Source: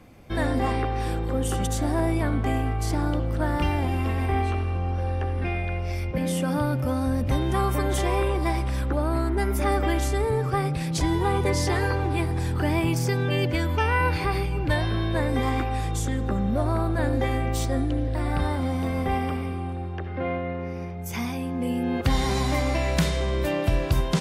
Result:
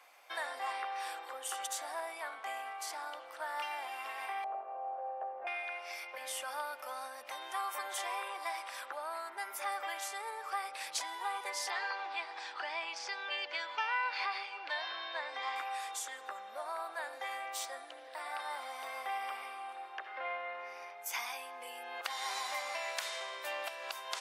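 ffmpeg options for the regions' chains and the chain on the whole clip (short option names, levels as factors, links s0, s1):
-filter_complex "[0:a]asettb=1/sr,asplit=3[s0][s1][s2];[s0]atrim=end=4.444[s3];[s1]atrim=start=4.44:end=5.47,asetpts=PTS-STARTPTS,afade=t=in:d=0.004:c=qsin,afade=t=out:st=1.026:d=0.004:c=qsin,lowpass=f=630:t=q:w=3.4,lowshelf=f=320:g=-8.5[s4];[s2]atrim=start=5.466[s5];[s3][s4]acrossfade=d=0.004:c1=hsin:c2=qsin[s6];[s6][s5]acrossfade=d=0.004:c1=qsin:c2=hsin,asettb=1/sr,asplit=3[s7][s8][s9];[s7]atrim=end=11.704[s10];[s8]atrim=start=11.7:end=15.56,asetpts=PTS-STARTPTS,afade=t=in:d=0.004:c=qsin,afade=t=out:st=3.856:d=0.004:c=qsin,lowpass=f=4900:w=0.5412,lowpass=f=4900:w=1.3066,aemphasis=mode=production:type=cd[s11];[s9]atrim=start=15.556[s12];[s10][s11]acrossfade=d=0.004:c1=hsin:c2=qsin[s13];[s13][s12]acrossfade=d=0.004:c1=qsin:c2=hsin,acompressor=threshold=0.0501:ratio=6,highpass=f=750:w=0.5412,highpass=f=750:w=1.3066,volume=0.841"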